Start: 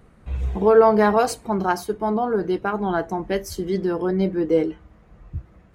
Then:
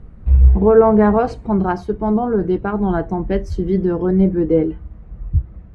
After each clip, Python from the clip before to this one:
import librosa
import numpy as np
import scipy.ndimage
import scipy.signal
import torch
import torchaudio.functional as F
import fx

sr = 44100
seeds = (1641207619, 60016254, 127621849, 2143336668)

y = fx.riaa(x, sr, side='playback')
y = fx.env_lowpass_down(y, sr, base_hz=2500.0, full_db=-9.0)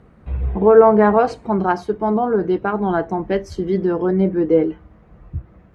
y = fx.highpass(x, sr, hz=410.0, slope=6)
y = y * librosa.db_to_amplitude(3.5)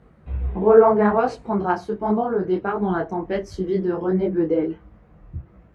y = fx.detune_double(x, sr, cents=49)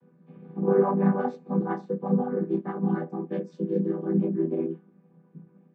y = fx.chord_vocoder(x, sr, chord='minor triad', root=52)
y = fx.notch_comb(y, sr, f0_hz=670.0)
y = y * librosa.db_to_amplitude(-4.5)